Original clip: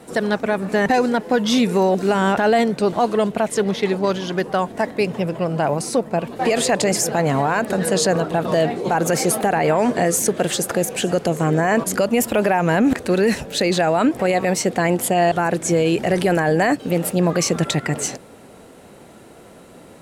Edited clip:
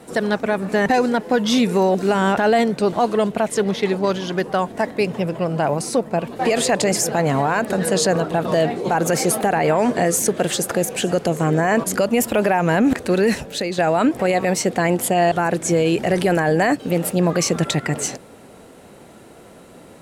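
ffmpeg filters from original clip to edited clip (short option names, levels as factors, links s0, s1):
-filter_complex "[0:a]asplit=2[s0][s1];[s0]atrim=end=13.78,asetpts=PTS-STARTPTS,afade=t=out:st=13.35:d=0.43:silence=0.354813[s2];[s1]atrim=start=13.78,asetpts=PTS-STARTPTS,afade=t=in:d=0.004:c=hsin:silence=0.354813[s3];[s2][s3]concat=n=2:v=0:a=1"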